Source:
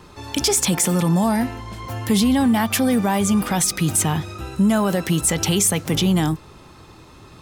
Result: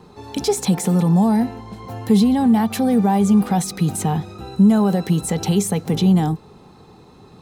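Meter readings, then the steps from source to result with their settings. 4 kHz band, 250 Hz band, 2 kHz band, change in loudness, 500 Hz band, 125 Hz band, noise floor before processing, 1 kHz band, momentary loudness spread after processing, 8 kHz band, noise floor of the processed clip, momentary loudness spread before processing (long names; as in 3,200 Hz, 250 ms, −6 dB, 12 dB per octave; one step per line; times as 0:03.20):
−6.5 dB, +3.0 dB, −7.5 dB, +1.5 dB, +1.0 dB, +2.5 dB, −45 dBFS, +1.0 dB, 11 LU, −8.5 dB, −47 dBFS, 10 LU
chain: hollow resonant body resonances 200/430/750/4,000 Hz, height 13 dB, ringing for 25 ms
level −8.5 dB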